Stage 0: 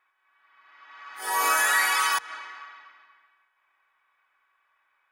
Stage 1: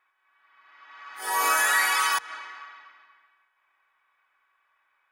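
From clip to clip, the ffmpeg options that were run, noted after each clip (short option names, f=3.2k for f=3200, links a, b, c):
-af anull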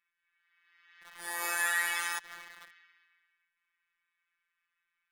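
-filter_complex "[0:a]acrossover=split=310|1400|6300[a][b][c][d];[b]acrusher=bits=6:mix=0:aa=0.000001[e];[a][e][c][d]amix=inputs=4:normalize=0,afftfilt=real='hypot(re,im)*cos(PI*b)':imag='0':win_size=1024:overlap=0.75,volume=-5dB"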